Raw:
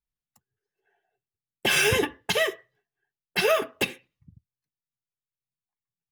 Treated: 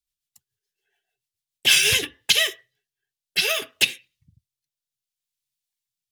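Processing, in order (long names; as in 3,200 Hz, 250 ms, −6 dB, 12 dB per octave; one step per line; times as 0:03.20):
drawn EQ curve 130 Hz 0 dB, 200 Hz −5 dB, 1,100 Hz −4 dB, 3,400 Hz +14 dB
rotating-speaker cabinet horn 7 Hz, later 0.6 Hz, at 0:01.44
highs frequency-modulated by the lows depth 0.28 ms
level −2 dB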